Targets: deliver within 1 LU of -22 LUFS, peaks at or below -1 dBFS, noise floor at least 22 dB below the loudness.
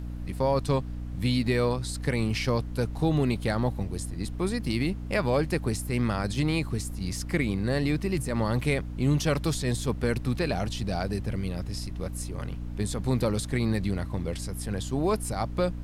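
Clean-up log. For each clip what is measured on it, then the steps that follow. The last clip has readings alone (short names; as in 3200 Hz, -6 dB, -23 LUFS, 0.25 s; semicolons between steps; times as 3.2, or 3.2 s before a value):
hum 60 Hz; harmonics up to 300 Hz; hum level -33 dBFS; noise floor -36 dBFS; noise floor target -51 dBFS; loudness -28.5 LUFS; peak -13.5 dBFS; loudness target -22.0 LUFS
-> de-hum 60 Hz, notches 5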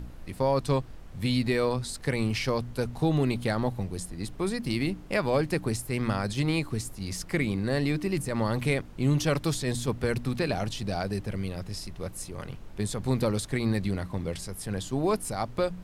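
hum none; noise floor -44 dBFS; noise floor target -52 dBFS
-> noise print and reduce 8 dB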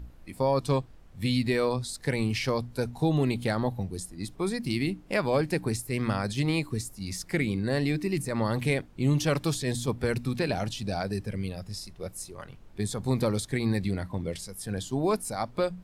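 noise floor -50 dBFS; noise floor target -52 dBFS
-> noise print and reduce 6 dB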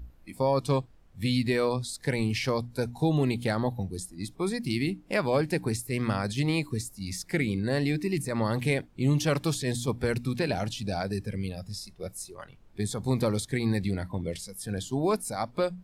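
noise floor -55 dBFS; loudness -29.5 LUFS; peak -14.0 dBFS; loudness target -22.0 LUFS
-> gain +7.5 dB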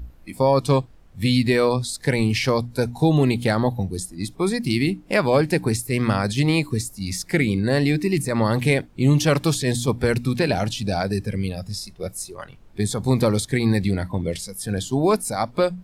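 loudness -22.0 LUFS; peak -6.5 dBFS; noise floor -47 dBFS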